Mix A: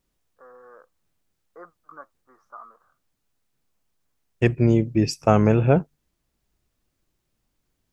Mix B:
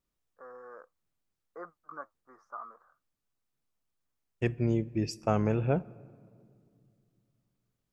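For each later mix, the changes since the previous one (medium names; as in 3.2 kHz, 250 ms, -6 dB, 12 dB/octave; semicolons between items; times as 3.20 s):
second voice -11.0 dB; reverb: on, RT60 2.3 s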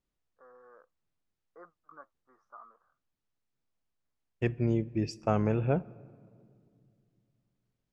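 first voice -8.0 dB; master: add distance through air 66 m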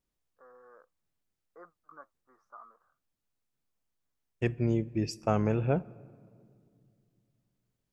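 master: remove distance through air 66 m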